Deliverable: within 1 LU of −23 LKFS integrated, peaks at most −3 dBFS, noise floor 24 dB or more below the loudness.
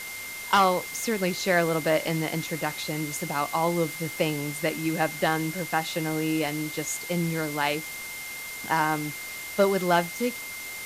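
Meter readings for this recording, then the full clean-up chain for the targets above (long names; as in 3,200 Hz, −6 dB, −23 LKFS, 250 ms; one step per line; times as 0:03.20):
interfering tone 2,100 Hz; level of the tone −37 dBFS; background noise floor −37 dBFS; target noise floor −51 dBFS; integrated loudness −27.0 LKFS; sample peak −9.0 dBFS; target loudness −23.0 LKFS
→ notch filter 2,100 Hz, Q 30
broadband denoise 14 dB, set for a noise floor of −37 dBFS
level +4 dB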